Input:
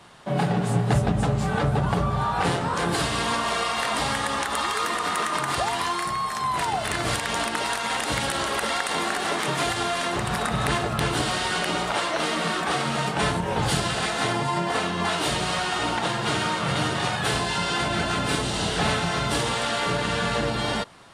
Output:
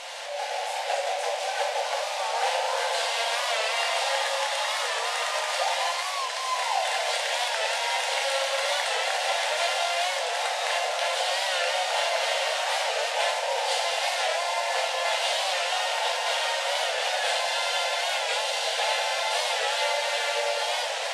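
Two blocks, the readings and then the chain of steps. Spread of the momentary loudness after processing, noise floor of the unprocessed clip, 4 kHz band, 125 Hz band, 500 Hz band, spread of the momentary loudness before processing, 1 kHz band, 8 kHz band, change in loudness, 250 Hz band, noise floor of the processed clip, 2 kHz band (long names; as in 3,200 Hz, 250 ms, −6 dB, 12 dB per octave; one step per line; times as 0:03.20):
3 LU, −29 dBFS, +2.0 dB, below −40 dB, 0.0 dB, 2 LU, −1.5 dB, 0.0 dB, −1.0 dB, below −40 dB, −31 dBFS, 0.0 dB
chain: linear delta modulator 64 kbit/s, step −22.5 dBFS
parametric band 1,200 Hz −12.5 dB 0.66 octaves
automatic gain control gain up to 6.5 dB
linear-phase brick-wall high-pass 480 Hz
high-frequency loss of the air 66 metres
delay that swaps between a low-pass and a high-pass 188 ms, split 950 Hz, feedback 56%, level −5.5 dB
rectangular room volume 140 cubic metres, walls mixed, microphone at 0.79 metres
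wow of a warped record 45 rpm, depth 100 cents
level −6 dB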